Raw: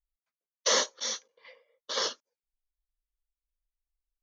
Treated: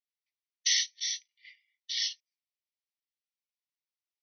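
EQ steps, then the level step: brick-wall FIR band-pass 1.8–6.2 kHz; +1.0 dB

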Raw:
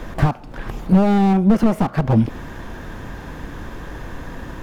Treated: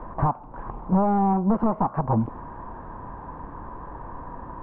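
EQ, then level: resonant low-pass 1 kHz, resonance Q 4.9; distance through air 110 m; -8.0 dB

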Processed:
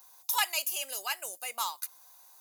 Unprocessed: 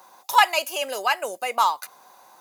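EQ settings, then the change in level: pre-emphasis filter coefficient 0.9; 0.0 dB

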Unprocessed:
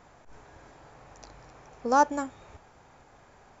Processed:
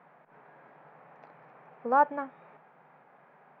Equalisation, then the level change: elliptic high-pass 150 Hz, stop band 40 dB; low-pass 2.3 kHz 24 dB/octave; peaking EQ 310 Hz -8 dB 0.82 oct; 0.0 dB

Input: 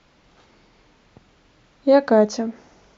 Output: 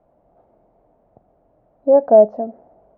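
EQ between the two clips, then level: resonant low-pass 670 Hz, resonance Q 5.5; -6.0 dB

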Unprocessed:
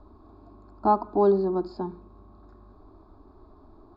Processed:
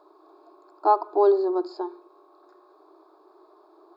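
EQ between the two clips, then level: brick-wall FIR high-pass 310 Hz; treble shelf 4.4 kHz +5.5 dB; +2.0 dB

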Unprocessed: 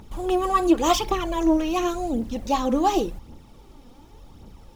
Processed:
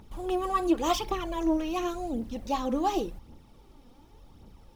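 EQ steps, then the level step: peaking EQ 7 kHz -3.5 dB 0.31 oct; -6.5 dB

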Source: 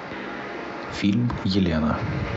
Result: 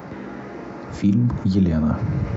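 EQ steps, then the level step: tone controls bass +11 dB, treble +8 dB; bass shelf 110 Hz -7.5 dB; peaking EQ 3.7 kHz -14 dB 1.9 oct; -1.5 dB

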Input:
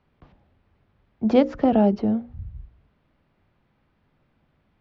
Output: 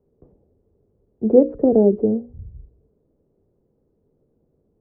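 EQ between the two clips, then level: resonant low-pass 440 Hz, resonance Q 4.9; -1.5 dB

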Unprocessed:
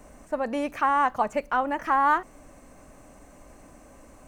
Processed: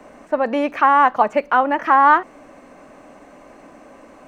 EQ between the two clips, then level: three-band isolator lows -18 dB, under 190 Hz, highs -16 dB, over 4.5 kHz; +9.0 dB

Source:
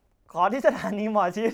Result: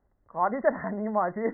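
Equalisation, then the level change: brick-wall FIR low-pass 2.1 kHz; -3.5 dB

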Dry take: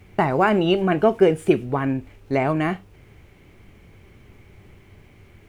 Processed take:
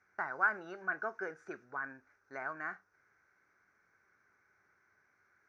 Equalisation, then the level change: two resonant band-passes 3 kHz, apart 2 oct; distance through air 270 m; treble shelf 4.5 kHz +7.5 dB; 0.0 dB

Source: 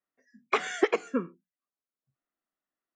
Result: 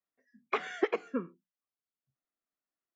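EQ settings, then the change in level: distance through air 140 m; -4.5 dB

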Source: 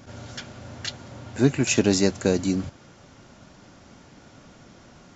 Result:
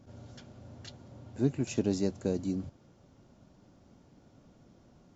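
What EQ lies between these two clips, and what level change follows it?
peaking EQ 1.8 kHz -10.5 dB 2.1 oct; treble shelf 5.1 kHz -12 dB; -8.0 dB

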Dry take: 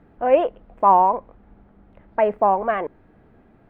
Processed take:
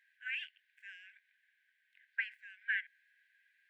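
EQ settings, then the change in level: brick-wall FIR high-pass 1.5 kHz; -1.5 dB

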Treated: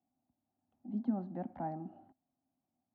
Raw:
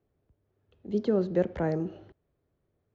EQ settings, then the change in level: dynamic bell 510 Hz, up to -3 dB, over -35 dBFS, Q 0.98; two resonant band-passes 440 Hz, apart 1.6 oct; +3.0 dB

